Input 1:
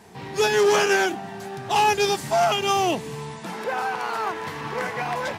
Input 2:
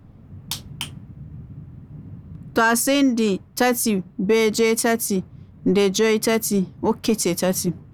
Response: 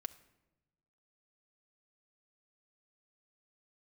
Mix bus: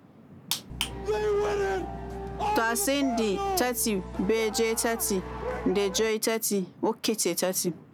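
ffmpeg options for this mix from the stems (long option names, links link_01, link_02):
-filter_complex "[0:a]equalizer=frequency=500:width_type=o:width=2.3:gain=11.5,acontrast=53,aeval=exprs='val(0)+0.1*(sin(2*PI*60*n/s)+sin(2*PI*2*60*n/s)/2+sin(2*PI*3*60*n/s)/3+sin(2*PI*4*60*n/s)/4+sin(2*PI*5*60*n/s)/5)':channel_layout=same,adelay=700,volume=-19dB[link_01];[1:a]highpass=260,volume=2dB[link_02];[link_01][link_02]amix=inputs=2:normalize=0,acompressor=threshold=-23dB:ratio=6"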